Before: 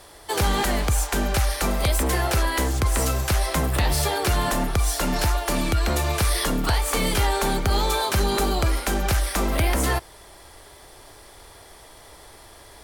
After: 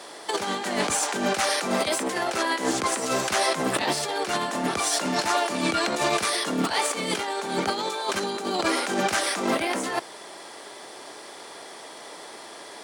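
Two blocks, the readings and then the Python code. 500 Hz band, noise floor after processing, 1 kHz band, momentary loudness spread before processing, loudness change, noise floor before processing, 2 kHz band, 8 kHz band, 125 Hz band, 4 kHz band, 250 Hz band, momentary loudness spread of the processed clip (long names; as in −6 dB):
0.0 dB, −42 dBFS, +0.5 dB, 2 LU, −2.0 dB, −47 dBFS, +0.5 dB, −1.0 dB, −16.0 dB, +0.5 dB, −1.0 dB, 17 LU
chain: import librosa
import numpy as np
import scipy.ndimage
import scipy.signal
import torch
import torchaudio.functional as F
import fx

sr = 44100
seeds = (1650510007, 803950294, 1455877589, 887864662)

y = scipy.signal.sosfilt(scipy.signal.butter(4, 200.0, 'highpass', fs=sr, output='sos'), x)
y = fx.over_compress(y, sr, threshold_db=-28.0, ratio=-0.5)
y = scipy.signal.savgol_filter(y, 9, 4, mode='constant')
y = F.gain(torch.from_numpy(y), 3.5).numpy()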